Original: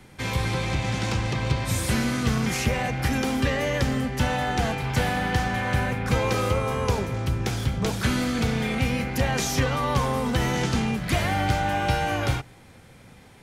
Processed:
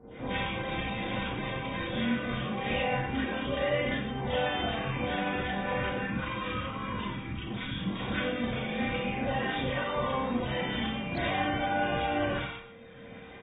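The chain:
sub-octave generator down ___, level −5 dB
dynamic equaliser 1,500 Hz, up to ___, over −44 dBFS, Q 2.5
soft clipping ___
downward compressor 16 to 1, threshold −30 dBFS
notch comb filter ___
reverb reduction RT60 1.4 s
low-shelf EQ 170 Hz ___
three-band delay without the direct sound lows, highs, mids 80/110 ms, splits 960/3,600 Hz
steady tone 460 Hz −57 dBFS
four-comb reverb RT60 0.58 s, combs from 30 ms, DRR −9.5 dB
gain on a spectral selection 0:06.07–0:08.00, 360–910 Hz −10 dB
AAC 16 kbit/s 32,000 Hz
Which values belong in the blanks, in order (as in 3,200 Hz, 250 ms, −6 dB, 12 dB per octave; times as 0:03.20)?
2 octaves, −3 dB, −21 dBFS, 430 Hz, −12 dB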